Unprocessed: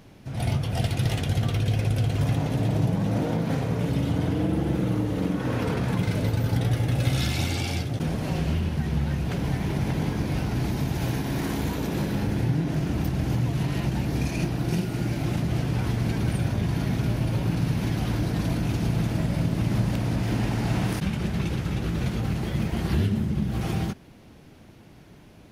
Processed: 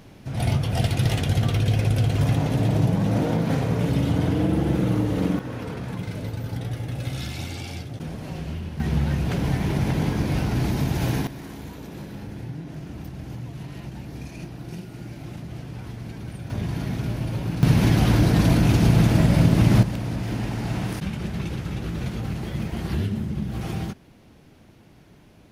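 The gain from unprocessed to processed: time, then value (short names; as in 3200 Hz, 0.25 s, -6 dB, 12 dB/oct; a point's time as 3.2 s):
+3 dB
from 5.39 s -6 dB
from 8.8 s +3 dB
from 11.27 s -10 dB
from 16.5 s -2 dB
from 17.63 s +8 dB
from 19.83 s -2 dB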